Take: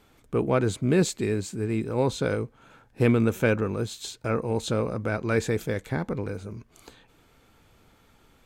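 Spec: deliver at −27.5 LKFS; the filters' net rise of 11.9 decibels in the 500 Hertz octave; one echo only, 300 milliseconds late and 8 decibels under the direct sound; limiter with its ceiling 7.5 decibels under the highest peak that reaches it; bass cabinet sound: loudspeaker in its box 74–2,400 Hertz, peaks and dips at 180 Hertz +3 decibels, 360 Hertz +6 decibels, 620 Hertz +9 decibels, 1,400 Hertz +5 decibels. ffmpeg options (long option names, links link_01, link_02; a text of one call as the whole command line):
ffmpeg -i in.wav -af "equalizer=frequency=500:width_type=o:gain=9,alimiter=limit=-13dB:level=0:latency=1,highpass=frequency=74:width=0.5412,highpass=frequency=74:width=1.3066,equalizer=frequency=180:width_type=q:width=4:gain=3,equalizer=frequency=360:width_type=q:width=4:gain=6,equalizer=frequency=620:width_type=q:width=4:gain=9,equalizer=frequency=1400:width_type=q:width=4:gain=5,lowpass=frequency=2400:width=0.5412,lowpass=frequency=2400:width=1.3066,aecho=1:1:300:0.398,volume=-7.5dB" out.wav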